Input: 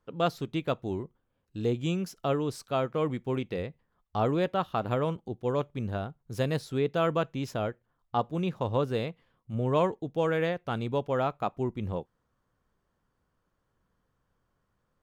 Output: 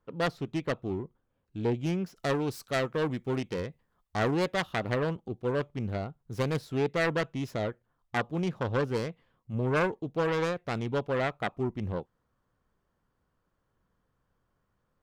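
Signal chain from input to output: self-modulated delay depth 0.39 ms; high shelf 4300 Hz -10.5 dB, from 2.16 s +2.5 dB, from 4.74 s -4.5 dB

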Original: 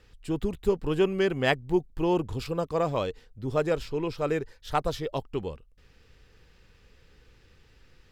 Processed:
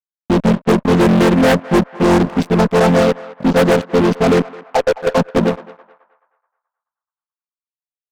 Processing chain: chord vocoder major triad, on F3; 4.42–5.07 auto-wah 470–1100 Hz, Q 3.3, down, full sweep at -24 dBFS; fuzz box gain 33 dB, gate -42 dBFS; on a send: narrowing echo 0.214 s, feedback 43%, band-pass 1200 Hz, level -16 dB; on the sum: gain +4.5 dB

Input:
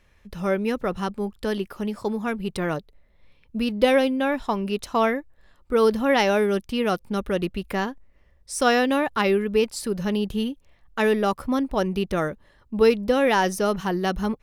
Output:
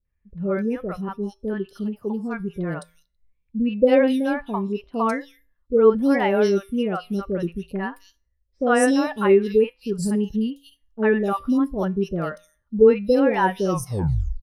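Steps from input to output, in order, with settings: tape stop at the end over 0.83 s; high shelf 5200 Hz +7.5 dB; resonator 56 Hz, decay 0.58 s, harmonics odd, mix 50%; three bands offset in time lows, mids, highs 50/260 ms, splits 620/3200 Hz; spectral expander 1.5:1; gain +8 dB

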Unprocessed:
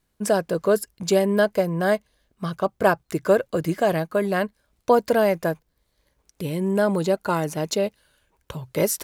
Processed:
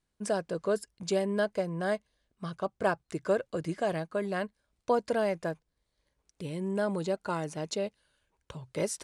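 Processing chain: Chebyshev low-pass 9600 Hz, order 4; gain -8.5 dB

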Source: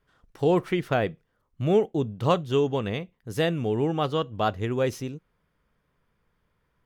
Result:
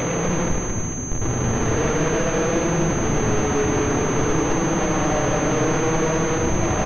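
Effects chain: HPF 60 Hz 24 dB/oct; treble ducked by the level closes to 760 Hz, closed at -21 dBFS; low shelf 400 Hz -7 dB; in parallel at +1 dB: compressor, threshold -34 dBFS, peak gain reduction 13.5 dB; on the sum: Paulstretch 4.9×, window 0.25 s, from 2.98; Schmitt trigger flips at -39 dBFS; frequency-shifting echo 0.226 s, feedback 59%, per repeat -140 Hz, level -4.5 dB; on a send at -5.5 dB: reverb RT60 2.3 s, pre-delay 4 ms; on the sum: pulse-width modulation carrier 6300 Hz; gain +4.5 dB

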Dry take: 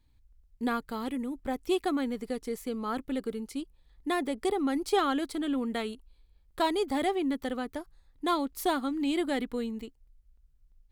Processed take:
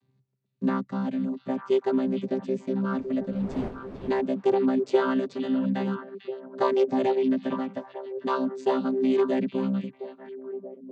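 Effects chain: chord vocoder bare fifth, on C3; 2.95–4.2 wind noise 420 Hz -47 dBFS; delay with a stepping band-pass 0.447 s, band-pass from 3300 Hz, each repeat -1.4 oct, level -6 dB; gain +6 dB

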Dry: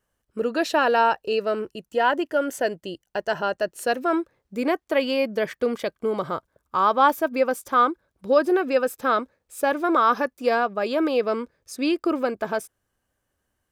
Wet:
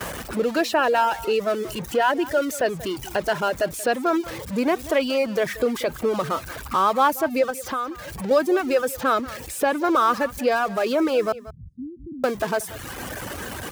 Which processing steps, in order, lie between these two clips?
zero-crossing step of -28 dBFS; HPF 41 Hz 24 dB/oct; gate with hold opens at -29 dBFS; 11.32–12.24 inverse Chebyshev low-pass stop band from 610 Hz, stop band 60 dB; reverb removal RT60 0.92 s; 7.5–8.31 compressor 3:1, threshold -31 dBFS, peak gain reduction 13 dB; echo 0.183 s -19 dB; three-band squash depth 40%

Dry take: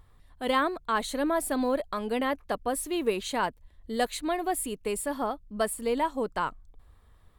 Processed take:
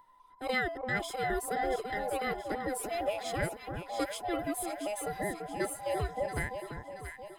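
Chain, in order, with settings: band inversion scrambler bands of 1000 Hz; echo with dull and thin repeats by turns 0.339 s, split 1400 Hz, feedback 69%, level -5 dB; gain -6 dB

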